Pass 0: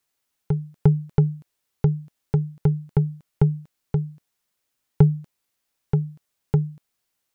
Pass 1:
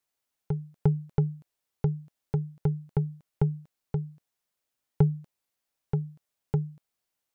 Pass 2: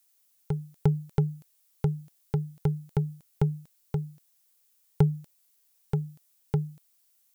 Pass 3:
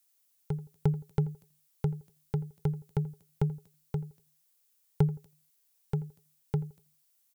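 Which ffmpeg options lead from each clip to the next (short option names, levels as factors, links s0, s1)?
-af "equalizer=f=660:t=o:w=1:g=3.5,volume=0.447"
-af "crystalizer=i=4.5:c=0"
-filter_complex "[0:a]asplit=2[s0][s1];[s1]adelay=84,lowpass=f=1200:p=1,volume=0.141,asplit=2[s2][s3];[s3]adelay=84,lowpass=f=1200:p=1,volume=0.32,asplit=2[s4][s5];[s5]adelay=84,lowpass=f=1200:p=1,volume=0.32[s6];[s0][s2][s4][s6]amix=inputs=4:normalize=0,volume=0.668"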